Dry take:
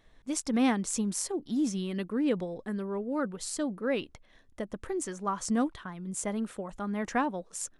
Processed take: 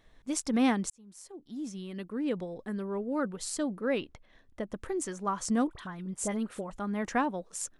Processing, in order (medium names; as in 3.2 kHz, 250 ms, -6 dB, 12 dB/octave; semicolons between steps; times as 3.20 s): 0.90–3.02 s: fade in; 3.98–4.71 s: treble shelf 6.5 kHz -10.5 dB; 5.67–6.71 s: phase dispersion highs, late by 40 ms, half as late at 1.6 kHz